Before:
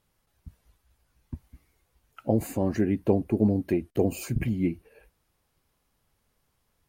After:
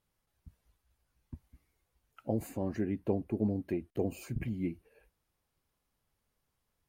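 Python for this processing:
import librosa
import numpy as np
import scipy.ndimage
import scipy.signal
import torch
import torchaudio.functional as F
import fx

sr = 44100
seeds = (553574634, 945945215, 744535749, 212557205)

y = fx.bass_treble(x, sr, bass_db=0, treble_db=-4, at=(2.49, 4.54))
y = F.gain(torch.from_numpy(y), -8.5).numpy()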